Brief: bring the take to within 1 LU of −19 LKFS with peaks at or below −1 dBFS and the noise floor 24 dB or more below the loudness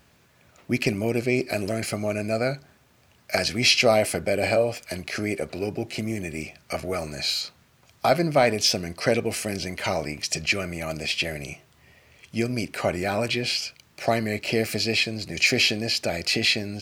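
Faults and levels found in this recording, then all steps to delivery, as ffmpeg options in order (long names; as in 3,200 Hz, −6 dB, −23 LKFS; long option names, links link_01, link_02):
integrated loudness −24.5 LKFS; sample peak −8.0 dBFS; target loudness −19.0 LKFS
→ -af "volume=5.5dB"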